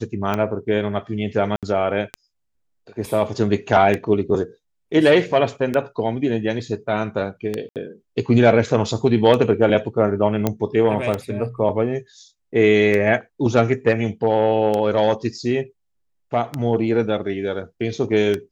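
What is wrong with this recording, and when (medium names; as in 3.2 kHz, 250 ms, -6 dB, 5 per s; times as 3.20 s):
tick 33 1/3 rpm -10 dBFS
1.56–1.63 s: dropout 67 ms
7.69–7.76 s: dropout 68 ms
10.47 s: pop -6 dBFS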